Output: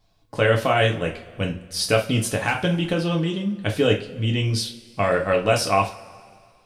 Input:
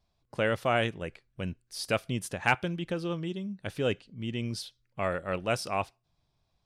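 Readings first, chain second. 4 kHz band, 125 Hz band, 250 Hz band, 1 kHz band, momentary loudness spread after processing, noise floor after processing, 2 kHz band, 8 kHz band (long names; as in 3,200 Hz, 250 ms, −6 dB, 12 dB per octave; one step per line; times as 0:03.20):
+11.0 dB, +12.0 dB, +9.5 dB, +8.5 dB, 9 LU, −58 dBFS, +7.5 dB, +12.0 dB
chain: brickwall limiter −20.5 dBFS, peak gain reduction 9.5 dB
coupled-rooms reverb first 0.28 s, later 2.1 s, from −22 dB, DRR 0.5 dB
level +9 dB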